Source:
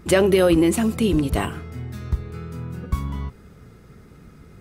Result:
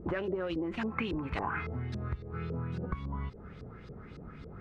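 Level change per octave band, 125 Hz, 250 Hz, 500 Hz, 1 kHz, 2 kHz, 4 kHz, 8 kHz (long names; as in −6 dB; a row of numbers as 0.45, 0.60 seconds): −10.5 dB, −15.0 dB, −17.0 dB, −7.5 dB, −9.0 dB, −16.5 dB, below −35 dB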